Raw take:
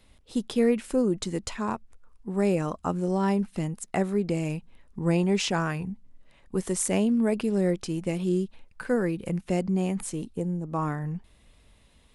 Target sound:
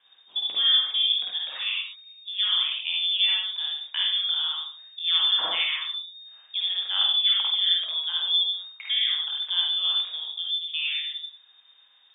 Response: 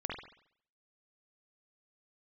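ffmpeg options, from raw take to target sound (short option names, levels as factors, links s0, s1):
-filter_complex "[0:a]lowpass=f=3100:t=q:w=0.5098,lowpass=f=3100:t=q:w=0.6013,lowpass=f=3100:t=q:w=0.9,lowpass=f=3100:t=q:w=2.563,afreqshift=-3700,asetnsamples=n=441:p=0,asendcmd='10.25 highpass f 1100',highpass=f=440:p=1[s0];[1:a]atrim=start_sample=2205,afade=t=out:st=0.26:d=0.01,atrim=end_sample=11907[s1];[s0][s1]afir=irnorm=-1:irlink=0"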